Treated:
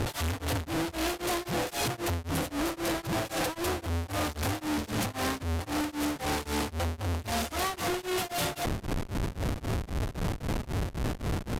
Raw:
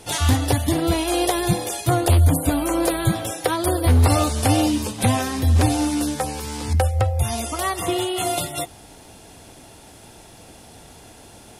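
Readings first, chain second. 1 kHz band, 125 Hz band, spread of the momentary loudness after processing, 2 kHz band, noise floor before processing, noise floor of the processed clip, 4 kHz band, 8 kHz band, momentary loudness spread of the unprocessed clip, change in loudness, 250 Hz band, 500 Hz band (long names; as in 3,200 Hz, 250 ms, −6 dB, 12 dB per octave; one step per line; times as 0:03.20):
−8.5 dB, −12.5 dB, 4 LU, −4.5 dB, −45 dBFS, −48 dBFS, −7.0 dB, −10.0 dB, 8 LU, −11.0 dB, −9.5 dB, −9.0 dB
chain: phase distortion by the signal itself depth 0.24 ms
downward compressor, threshold −23 dBFS, peak gain reduction 11 dB
comparator with hysteresis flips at −39 dBFS
downsampling to 32,000 Hz
tremolo along a rectified sine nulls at 3.8 Hz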